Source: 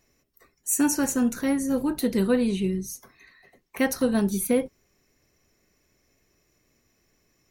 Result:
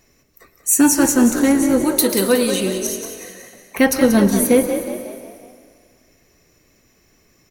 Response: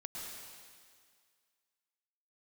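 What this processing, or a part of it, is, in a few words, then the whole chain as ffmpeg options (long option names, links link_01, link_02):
saturated reverb return: -filter_complex "[0:a]asettb=1/sr,asplit=3[link_01][link_02][link_03];[link_01]atrim=end=1.844[link_04];[link_02]atrim=start=1.84:end=2.87,asetpts=PTS-STARTPTS,afade=type=in:duration=0.004:curve=qsin,afade=type=out:start_time=1.026:duration=0.004:curve=qsin,bass=frequency=250:gain=-13,treble=frequency=4000:gain=11[link_05];[link_03]atrim=start=2.866[link_06];[link_04][link_05]acrossfade=duration=0.004:curve1=hsin:curve2=qsin[link_07];[link_07][link_06]acrossfade=duration=0.004:curve1=qsin:curve2=hsin,asplit=2[link_08][link_09];[1:a]atrim=start_sample=2205[link_10];[link_09][link_10]afir=irnorm=-1:irlink=0,asoftclip=type=tanh:threshold=-23.5dB,volume=-5dB[link_11];[link_08][link_11]amix=inputs=2:normalize=0,asplit=6[link_12][link_13][link_14][link_15][link_16][link_17];[link_13]adelay=183,afreqshift=44,volume=-9.5dB[link_18];[link_14]adelay=366,afreqshift=88,volume=-16.1dB[link_19];[link_15]adelay=549,afreqshift=132,volume=-22.6dB[link_20];[link_16]adelay=732,afreqshift=176,volume=-29.2dB[link_21];[link_17]adelay=915,afreqshift=220,volume=-35.7dB[link_22];[link_12][link_18][link_19][link_20][link_21][link_22]amix=inputs=6:normalize=0,volume=7.5dB"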